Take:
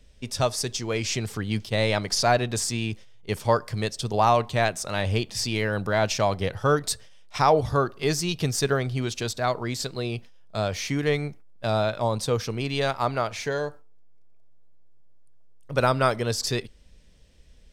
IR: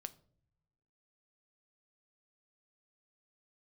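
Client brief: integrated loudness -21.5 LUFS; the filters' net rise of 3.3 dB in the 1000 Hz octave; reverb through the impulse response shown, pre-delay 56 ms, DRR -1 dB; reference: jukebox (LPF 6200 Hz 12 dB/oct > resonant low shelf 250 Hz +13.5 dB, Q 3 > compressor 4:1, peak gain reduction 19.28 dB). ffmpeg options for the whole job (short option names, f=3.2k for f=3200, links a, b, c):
-filter_complex "[0:a]equalizer=f=1k:t=o:g=6,asplit=2[a][b];[1:a]atrim=start_sample=2205,adelay=56[c];[b][c]afir=irnorm=-1:irlink=0,volume=5dB[d];[a][d]amix=inputs=2:normalize=0,lowpass=6.2k,lowshelf=f=250:t=q:w=3:g=13.5,acompressor=threshold=-24dB:ratio=4,volume=4dB"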